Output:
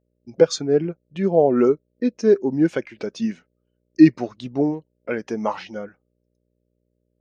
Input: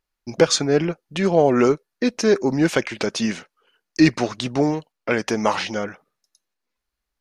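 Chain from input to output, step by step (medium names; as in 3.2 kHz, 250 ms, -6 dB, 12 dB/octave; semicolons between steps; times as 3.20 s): mains buzz 60 Hz, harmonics 10, -52 dBFS -2 dB/octave; spectral contrast expander 1.5:1; trim +2 dB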